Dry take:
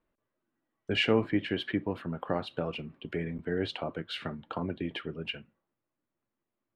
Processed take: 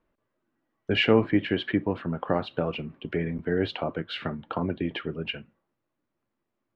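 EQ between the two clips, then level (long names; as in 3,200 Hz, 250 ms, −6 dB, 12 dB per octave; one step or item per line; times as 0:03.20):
Bessel low-pass filter 3,300 Hz, order 2
+5.5 dB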